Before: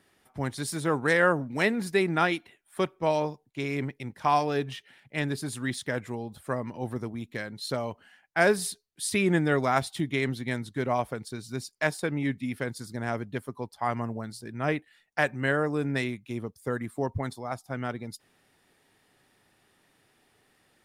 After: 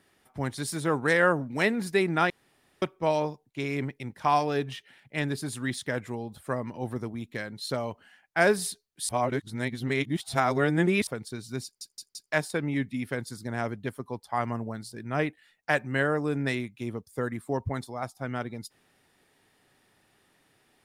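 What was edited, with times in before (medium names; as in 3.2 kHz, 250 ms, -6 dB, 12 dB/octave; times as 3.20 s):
2.30–2.82 s: room tone
9.09–11.07 s: reverse
11.64 s: stutter 0.17 s, 4 plays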